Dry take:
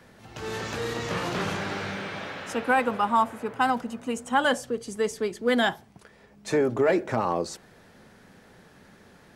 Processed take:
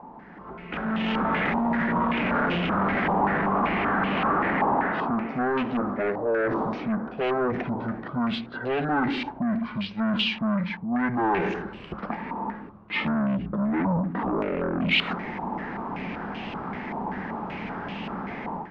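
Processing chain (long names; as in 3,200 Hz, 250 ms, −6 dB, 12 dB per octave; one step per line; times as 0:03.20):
reversed playback
downward compressor 6 to 1, threshold −38 dBFS, peak gain reduction 19 dB
reversed playback
low shelf with overshoot 280 Hz −8.5 dB, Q 3
automatic gain control gain up to 15 dB
wrong playback speed 15 ips tape played at 7.5 ips
in parallel at 0 dB: brickwall limiter −20.5 dBFS, peak gain reduction 10 dB
on the sum: soft clipping −21 dBFS, distortion −9 dB
low-pass on a step sequencer 5.2 Hz 940–2,800 Hz
level −2 dB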